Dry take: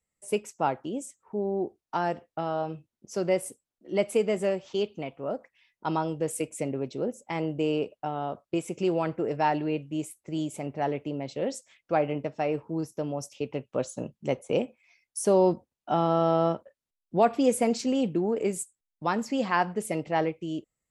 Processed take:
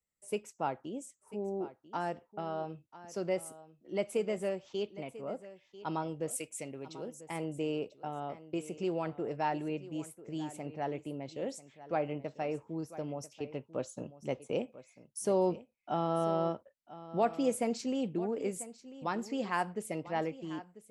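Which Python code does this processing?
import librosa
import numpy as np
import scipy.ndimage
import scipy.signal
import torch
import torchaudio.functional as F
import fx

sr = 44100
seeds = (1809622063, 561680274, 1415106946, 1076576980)

y = fx.tilt_shelf(x, sr, db=-6.0, hz=1500.0, at=(6.31, 7.21))
y = y + 10.0 ** (-16.0 / 20.0) * np.pad(y, (int(993 * sr / 1000.0), 0))[:len(y)]
y = y * librosa.db_to_amplitude(-7.5)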